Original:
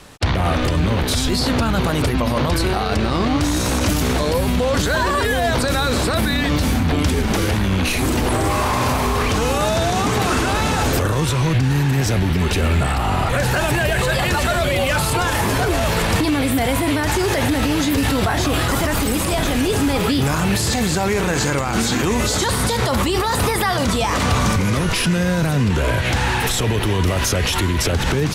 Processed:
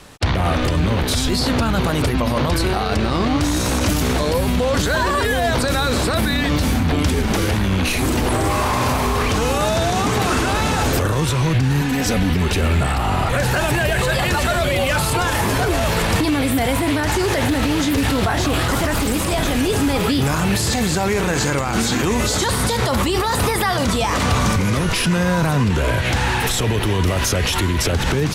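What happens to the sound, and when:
11.81–12.34 s: comb 4 ms, depth 81%
16.76–19.38 s: loudspeaker Doppler distortion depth 0.17 ms
25.11–25.64 s: peaking EQ 1 kHz +7.5 dB 0.78 oct

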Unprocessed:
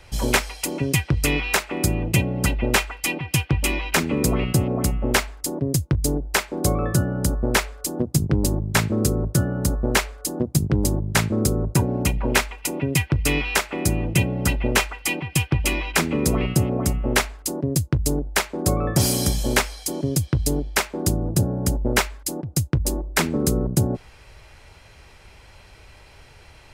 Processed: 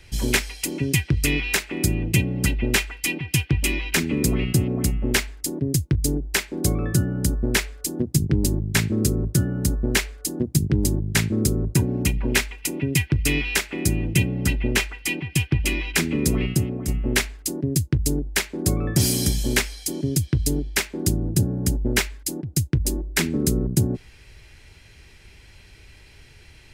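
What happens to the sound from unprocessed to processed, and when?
14.29–15.80 s: treble shelf 5 kHz -3.5 dB
16.43–16.88 s: fade out, to -7 dB
whole clip: high-order bell 820 Hz -9.5 dB

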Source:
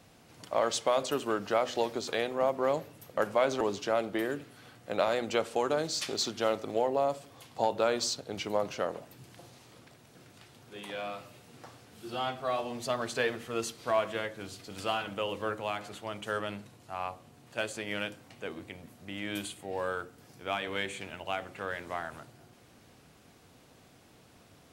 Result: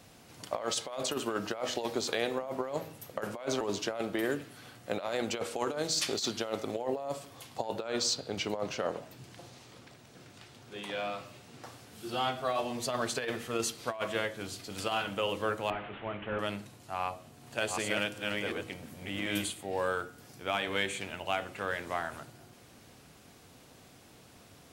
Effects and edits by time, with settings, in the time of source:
7.80–11.64 s: peaking EQ 12 kHz -9 dB
15.70–16.39 s: one-bit delta coder 16 kbps, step -43 dBFS
17.04–19.52 s: chunks repeated in reverse 370 ms, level -2 dB
whole clip: treble shelf 3.7 kHz +3.5 dB; de-hum 160.1 Hz, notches 30; compressor with a negative ratio -31 dBFS, ratio -0.5

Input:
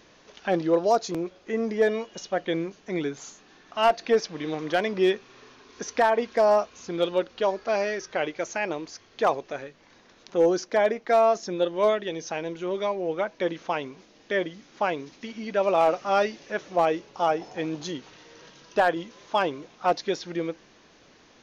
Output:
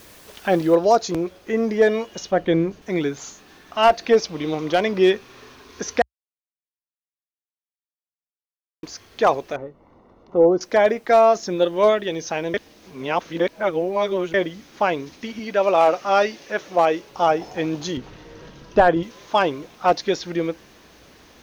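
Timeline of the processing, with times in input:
0.75 s: noise floor step -55 dB -69 dB
2.31–2.82 s: tilt EQ -2 dB/octave
4.14–4.82 s: peaking EQ 1.7 kHz -9 dB 0.28 oct
6.02–8.83 s: mute
9.56–10.61 s: Savitzky-Golay filter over 65 samples
12.54–14.34 s: reverse
15.39–17.12 s: bass shelf 180 Hz -9.5 dB
17.97–19.03 s: tilt EQ -2.5 dB/octave
whole clip: peaking EQ 63 Hz +11 dB 1 oct; trim +5.5 dB

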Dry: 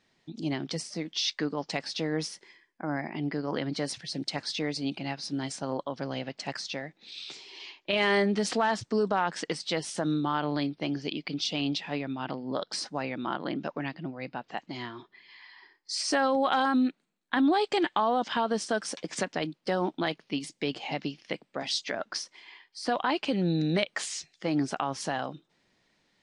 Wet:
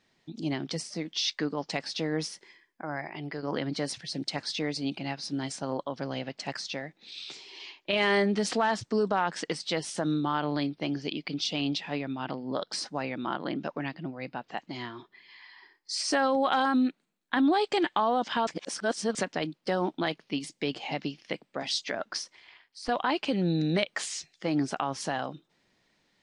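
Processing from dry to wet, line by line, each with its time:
2.82–3.43 s: peaking EQ 230 Hz -14 dB 0.83 oct
18.47–19.15 s: reverse
22.35–22.89 s: AM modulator 260 Hz, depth 90%

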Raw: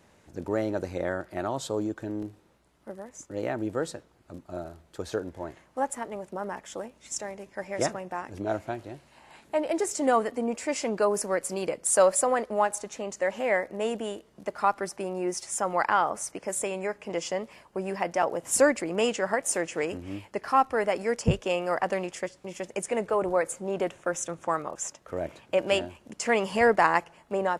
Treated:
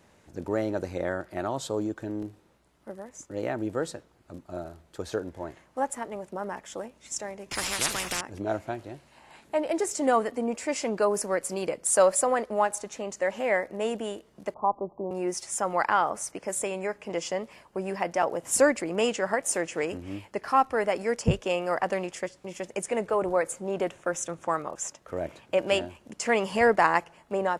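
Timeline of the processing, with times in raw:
7.51–8.21 s: spectrum-flattening compressor 10:1
14.54–15.11 s: steep low-pass 1.1 kHz 96 dB/octave

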